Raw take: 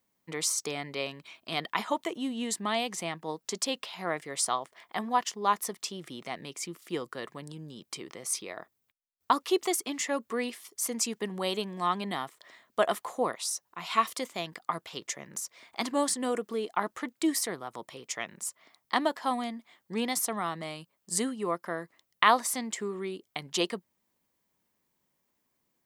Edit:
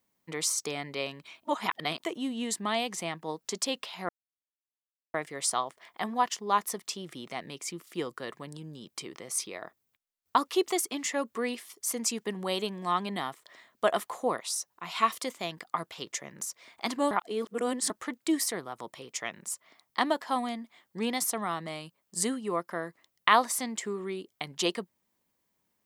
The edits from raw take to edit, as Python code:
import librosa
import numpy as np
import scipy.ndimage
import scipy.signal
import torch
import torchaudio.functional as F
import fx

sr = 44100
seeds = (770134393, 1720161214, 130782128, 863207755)

y = fx.edit(x, sr, fx.reverse_span(start_s=1.45, length_s=0.55),
    fx.insert_silence(at_s=4.09, length_s=1.05),
    fx.reverse_span(start_s=16.06, length_s=0.79), tone=tone)